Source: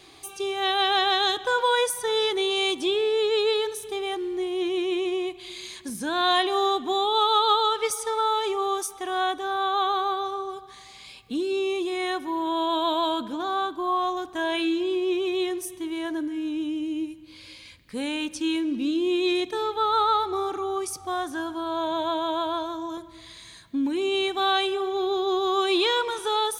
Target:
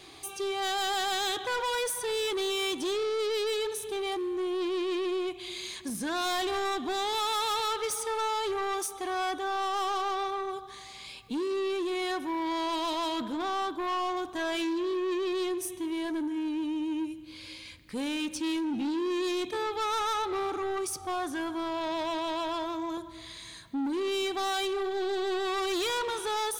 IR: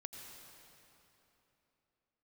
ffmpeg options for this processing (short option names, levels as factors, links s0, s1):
-filter_complex "[0:a]asoftclip=type=tanh:threshold=0.0376,asplit=2[s0][s1];[1:a]atrim=start_sample=2205[s2];[s1][s2]afir=irnorm=-1:irlink=0,volume=0.15[s3];[s0][s3]amix=inputs=2:normalize=0"